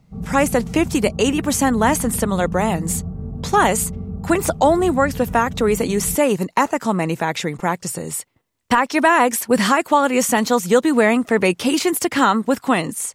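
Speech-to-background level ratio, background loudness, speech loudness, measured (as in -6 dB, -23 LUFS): 11.5 dB, -30.0 LUFS, -18.5 LUFS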